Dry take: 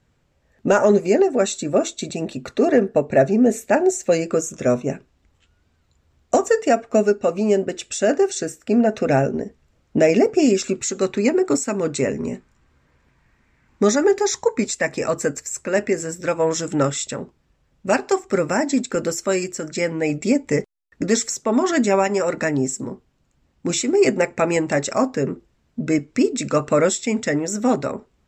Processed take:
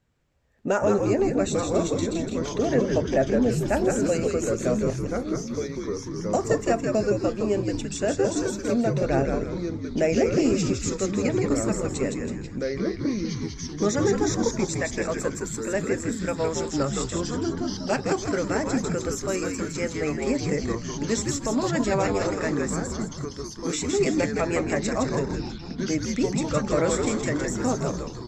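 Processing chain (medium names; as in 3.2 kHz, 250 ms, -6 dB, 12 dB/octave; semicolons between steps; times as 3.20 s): frequency-shifting echo 163 ms, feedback 44%, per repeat -94 Hz, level -4 dB; ever faster or slower copies 711 ms, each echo -3 st, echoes 3, each echo -6 dB; trim -7.5 dB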